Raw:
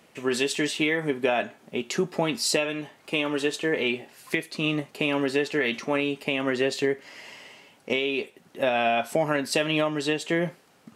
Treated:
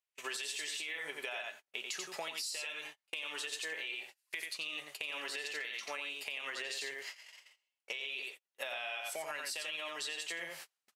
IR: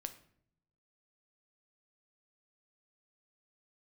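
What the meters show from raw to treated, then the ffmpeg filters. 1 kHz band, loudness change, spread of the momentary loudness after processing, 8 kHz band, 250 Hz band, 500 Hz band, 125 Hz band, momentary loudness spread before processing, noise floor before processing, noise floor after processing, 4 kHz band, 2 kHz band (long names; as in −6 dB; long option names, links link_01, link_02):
−16.0 dB, −13.0 dB, 6 LU, −7.5 dB, −31.0 dB, −22.0 dB, below −30 dB, 9 LU, −59 dBFS, below −85 dBFS, −8.5 dB, −10.5 dB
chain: -af "areverse,acompressor=mode=upward:threshold=-35dB:ratio=2.5,areverse,highpass=frequency=110:width=0.5412,highpass=frequency=110:width=1.3066,aecho=1:1:88:0.531,agate=range=-37dB:threshold=-37dB:ratio=16:detection=peak,lowpass=frequency=3400:poles=1,aderivative,alimiter=level_in=8dB:limit=-24dB:level=0:latency=1:release=69,volume=-8dB,equalizer=frequency=230:width_type=o:width=1.1:gain=-11.5,acompressor=threshold=-49dB:ratio=6,volume=11.5dB"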